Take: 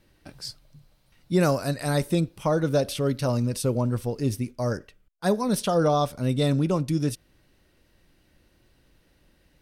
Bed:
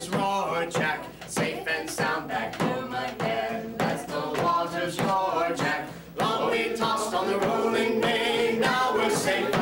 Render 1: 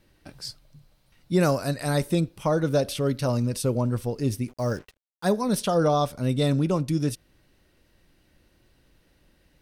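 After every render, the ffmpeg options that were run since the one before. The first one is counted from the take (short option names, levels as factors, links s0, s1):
-filter_complex "[0:a]asettb=1/sr,asplit=3[s0][s1][s2];[s0]atrim=end=4.484[s3];[s1]atrim=start=4.48:end=5.31,asetpts=PTS-STARTPTS,afade=t=in:d=0.004:c=qsin,afade=t=out:st=0.826:d=0.004:c=qsin,acrusher=bits=7:mix=0:aa=0.5[s4];[s2]atrim=start=5.306[s5];[s3][s4]acrossfade=d=0.004:c1=hsin:c2=qsin[s6];[s6][s5]acrossfade=d=0.004:c1=qsin:c2=hsin"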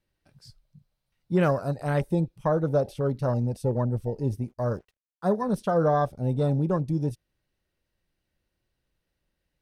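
-af "afwtdn=0.0251,equalizer=f=280:t=o:w=0.62:g=-5"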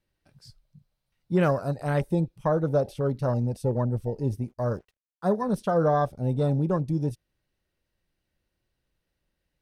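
-af anull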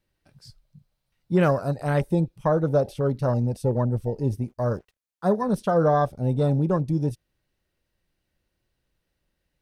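-af "volume=1.33"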